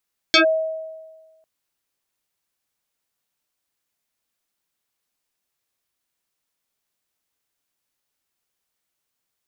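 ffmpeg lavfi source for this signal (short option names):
-f lavfi -i "aevalsrc='0.355*pow(10,-3*t/1.39)*sin(2*PI*639*t+5.2*clip(1-t/0.11,0,1)*sin(2*PI*1.51*639*t))':d=1.1:s=44100"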